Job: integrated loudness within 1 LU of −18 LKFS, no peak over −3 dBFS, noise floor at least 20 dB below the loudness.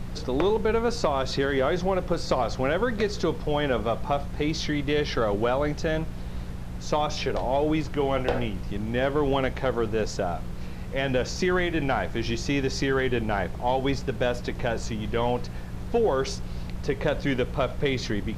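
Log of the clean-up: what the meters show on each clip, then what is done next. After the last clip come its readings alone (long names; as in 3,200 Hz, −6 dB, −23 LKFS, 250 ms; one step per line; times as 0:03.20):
mains hum 60 Hz; hum harmonics up to 180 Hz; level of the hum −35 dBFS; background noise floor −35 dBFS; target noise floor −47 dBFS; integrated loudness −27.0 LKFS; sample peak −12.0 dBFS; target loudness −18.0 LKFS
→ hum removal 60 Hz, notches 3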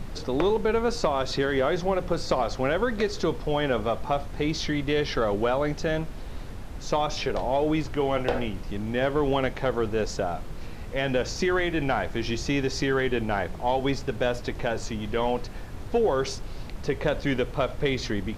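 mains hum none found; background noise floor −37 dBFS; target noise floor −47 dBFS
→ noise reduction from a noise print 10 dB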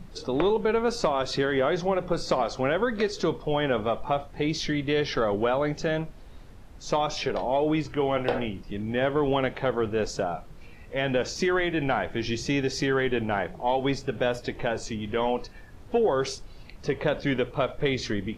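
background noise floor −46 dBFS; target noise floor −47 dBFS
→ noise reduction from a noise print 6 dB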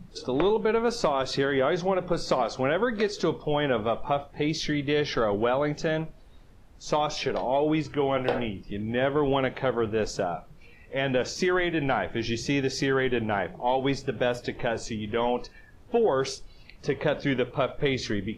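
background noise floor −51 dBFS; integrated loudness −27.0 LKFS; sample peak −13.0 dBFS; target loudness −18.0 LKFS
→ level +9 dB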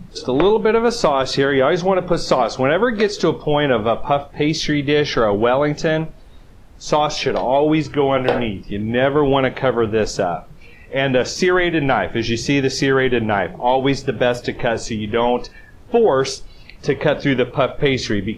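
integrated loudness −18.0 LKFS; sample peak −4.0 dBFS; background noise floor −42 dBFS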